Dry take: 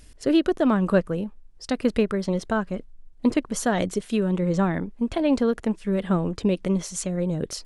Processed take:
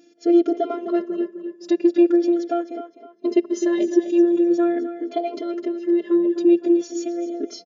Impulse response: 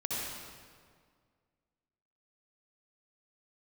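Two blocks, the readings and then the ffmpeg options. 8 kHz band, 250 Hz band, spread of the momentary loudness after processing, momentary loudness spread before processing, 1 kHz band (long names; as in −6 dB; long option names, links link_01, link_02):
can't be measured, +4.5 dB, 11 LU, 7 LU, −0.5 dB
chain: -filter_complex "[0:a]asplit=2[link_01][link_02];[1:a]atrim=start_sample=2205,afade=type=out:start_time=0.41:duration=0.01,atrim=end_sample=18522,asetrate=70560,aresample=44100[link_03];[link_02][link_03]afir=irnorm=-1:irlink=0,volume=-27.5dB[link_04];[link_01][link_04]amix=inputs=2:normalize=0,asoftclip=type=tanh:threshold=-11.5dB,afftfilt=real='hypot(re,im)*cos(PI*b)':imag='0':win_size=512:overlap=0.75,lowshelf=frequency=680:width_type=q:width=3:gain=9,asplit=2[link_05][link_06];[link_06]adelay=256,lowpass=frequency=4800:poles=1,volume=-10dB,asplit=2[link_07][link_08];[link_08]adelay=256,lowpass=frequency=4800:poles=1,volume=0.37,asplit=2[link_09][link_10];[link_10]adelay=256,lowpass=frequency=4800:poles=1,volume=0.37,asplit=2[link_11][link_12];[link_12]adelay=256,lowpass=frequency=4800:poles=1,volume=0.37[link_13];[link_05][link_07][link_09][link_11][link_13]amix=inputs=5:normalize=0,afftfilt=real='re*between(b*sr/4096,180,7200)':imag='im*between(b*sr/4096,180,7200)':win_size=4096:overlap=0.75,asplit=2[link_14][link_15];[link_15]adelay=3.7,afreqshift=-0.43[link_16];[link_14][link_16]amix=inputs=2:normalize=1,volume=2.5dB"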